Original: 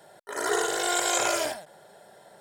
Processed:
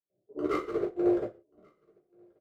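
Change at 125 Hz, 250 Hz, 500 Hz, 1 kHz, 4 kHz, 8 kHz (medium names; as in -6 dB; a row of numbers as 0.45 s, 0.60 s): +5.0 dB, +7.0 dB, -1.0 dB, -12.0 dB, under -25 dB, under -35 dB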